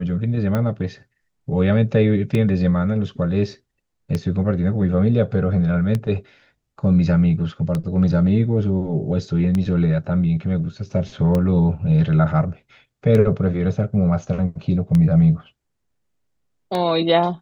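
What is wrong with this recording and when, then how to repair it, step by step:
tick 33 1/3 rpm -11 dBFS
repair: de-click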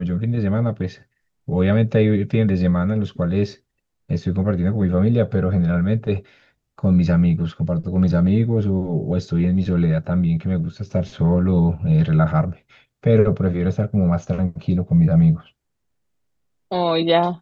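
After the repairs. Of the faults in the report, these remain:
nothing left

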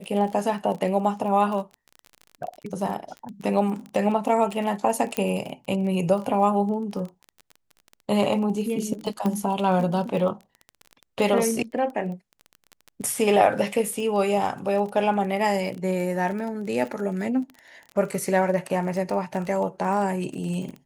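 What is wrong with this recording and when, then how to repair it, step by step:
crackle 23 per s -31 dBFS
5.17 s: pop -9 dBFS
9.26 s: pop -15 dBFS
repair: de-click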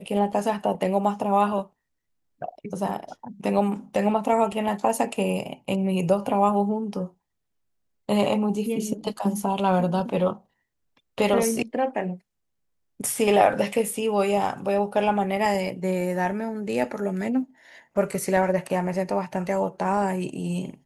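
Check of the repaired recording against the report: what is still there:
nothing left

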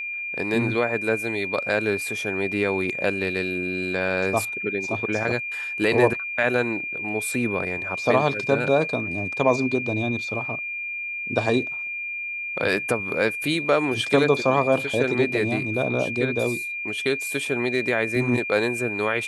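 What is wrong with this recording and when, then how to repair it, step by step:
whine 2.4 kHz -28 dBFS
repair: band-stop 2.4 kHz, Q 30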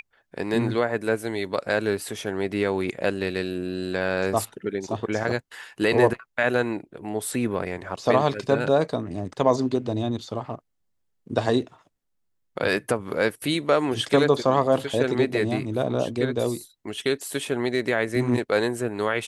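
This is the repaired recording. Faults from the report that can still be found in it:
nothing left

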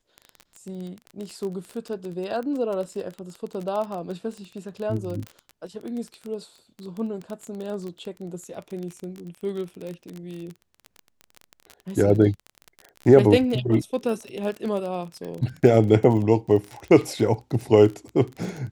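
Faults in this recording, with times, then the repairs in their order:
crackle 24 per s -29 dBFS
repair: de-click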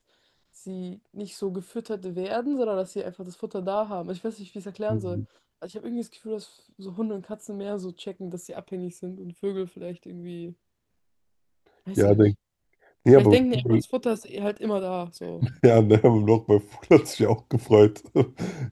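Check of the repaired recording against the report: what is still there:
nothing left

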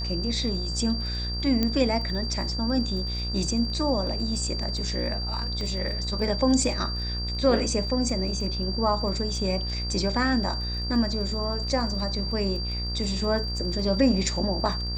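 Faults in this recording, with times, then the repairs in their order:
buzz 60 Hz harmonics 33 -31 dBFS
crackle 22 per s -36 dBFS
whine 4.7 kHz -32 dBFS
1.63 s: pop -11 dBFS
5.61 s: pop -22 dBFS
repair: de-click; band-stop 4.7 kHz, Q 30; de-hum 60 Hz, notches 33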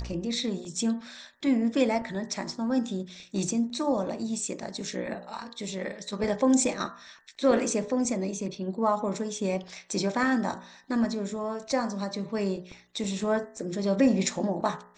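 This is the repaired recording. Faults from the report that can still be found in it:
5.61 s: pop

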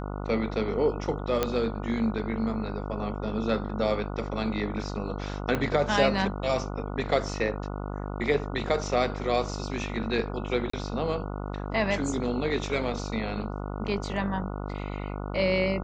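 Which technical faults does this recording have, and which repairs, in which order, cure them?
buzz 50 Hz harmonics 29 -34 dBFS
1.43 s: pop -10 dBFS
5.55 s: pop -14 dBFS
10.70–10.73 s: dropout 34 ms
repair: de-click; de-hum 50 Hz, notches 29; interpolate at 10.70 s, 34 ms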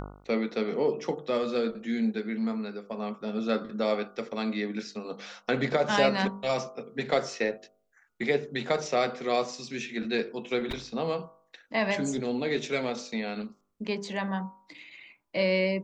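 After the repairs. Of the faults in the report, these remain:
5.55 s: pop

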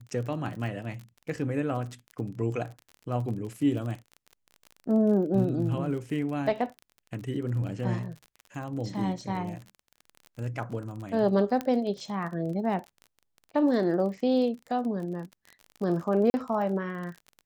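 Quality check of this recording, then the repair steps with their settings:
crackle 34 per s -36 dBFS
11.61 s: pop -17 dBFS
16.30–16.34 s: dropout 40 ms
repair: de-click; interpolate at 16.30 s, 40 ms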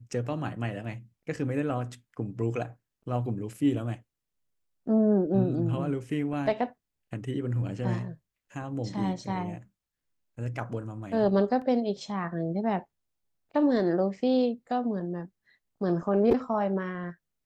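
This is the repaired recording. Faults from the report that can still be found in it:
11.61 s: pop

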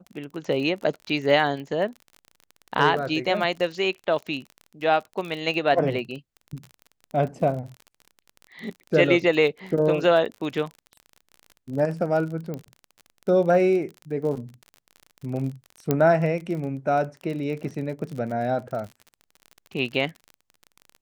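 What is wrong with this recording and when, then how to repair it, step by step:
crackle 36 per s -32 dBFS
12.54 s: pop -20 dBFS
15.91 s: pop -8 dBFS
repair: de-click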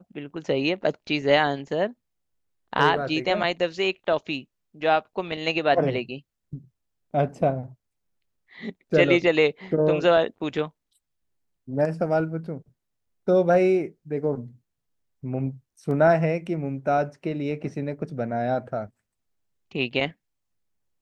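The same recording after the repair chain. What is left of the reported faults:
15.91 s: pop

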